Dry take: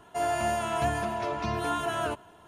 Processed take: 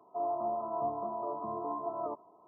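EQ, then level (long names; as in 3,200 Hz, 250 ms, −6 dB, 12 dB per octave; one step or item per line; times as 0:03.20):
high-pass filter 290 Hz 12 dB per octave
linear-phase brick-wall low-pass 1,300 Hz
−4.5 dB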